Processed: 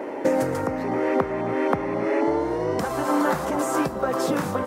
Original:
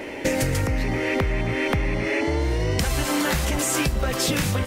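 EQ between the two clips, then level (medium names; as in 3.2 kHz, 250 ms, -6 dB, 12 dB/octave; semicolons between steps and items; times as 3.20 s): high-pass 240 Hz 12 dB/octave; resonant high shelf 1.7 kHz -13 dB, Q 1.5; +3.0 dB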